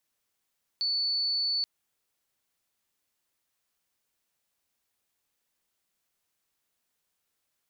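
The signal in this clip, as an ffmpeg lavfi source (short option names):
-f lavfi -i "sine=f=4470:d=0.83:r=44100,volume=-7.44dB"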